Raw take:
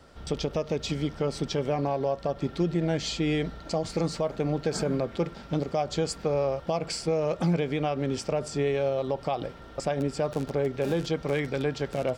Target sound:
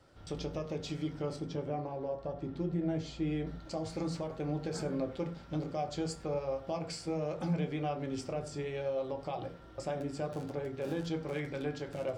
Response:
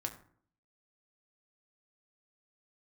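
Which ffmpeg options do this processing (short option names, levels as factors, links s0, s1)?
-filter_complex "[0:a]asettb=1/sr,asplit=3[s0][s1][s2];[s0]atrim=end=1.364[s3];[s1]atrim=start=1.36:end=3.47,asetpts=PTS-STARTPTS,afade=t=in:d=0.004:c=qsin,afade=t=out:st=2.106:d=0.004:c=qsin,highshelf=f=2000:g=-9.5[s4];[s2]atrim=start=3.466[s5];[s3][s4]acrossfade=d=0.004:c1=hsin:c2=qsin[s6];[s6][s5]acrossfade=d=0.004:c1=qsin:c2=hsin[s7];[1:a]atrim=start_sample=2205,atrim=end_sample=6174[s8];[s7][s8]afir=irnorm=-1:irlink=0,volume=0.376"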